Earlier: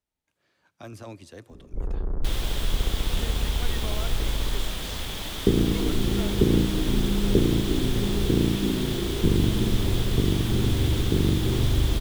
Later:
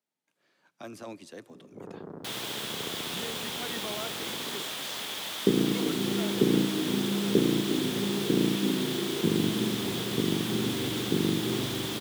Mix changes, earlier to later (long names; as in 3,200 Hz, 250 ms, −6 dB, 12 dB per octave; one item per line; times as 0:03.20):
first sound: send off
second sound: add high-pass filter 600 Hz 12 dB per octave
master: add high-pass filter 160 Hz 24 dB per octave